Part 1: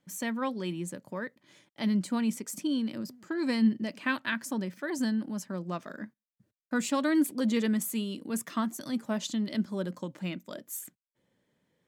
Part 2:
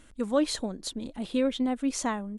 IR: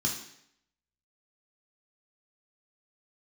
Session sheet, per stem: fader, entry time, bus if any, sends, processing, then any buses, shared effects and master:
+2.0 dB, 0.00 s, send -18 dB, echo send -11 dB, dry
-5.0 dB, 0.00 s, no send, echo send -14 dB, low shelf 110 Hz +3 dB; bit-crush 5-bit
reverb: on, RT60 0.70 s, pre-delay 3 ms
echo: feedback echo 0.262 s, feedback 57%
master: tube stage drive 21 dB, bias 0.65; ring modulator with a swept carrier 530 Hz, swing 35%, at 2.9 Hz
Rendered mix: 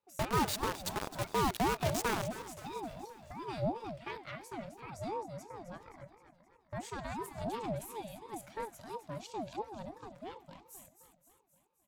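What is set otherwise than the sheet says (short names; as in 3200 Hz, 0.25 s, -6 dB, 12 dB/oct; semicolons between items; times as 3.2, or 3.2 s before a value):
stem 1 +2.0 dB -> -7.0 dB; stem 2 -5.0 dB -> +1.5 dB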